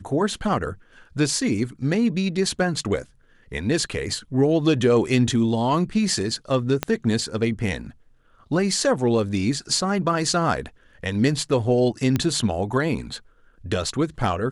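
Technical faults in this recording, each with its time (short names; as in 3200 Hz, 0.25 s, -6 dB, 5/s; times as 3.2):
6.83 pop -7 dBFS
12.16 pop -9 dBFS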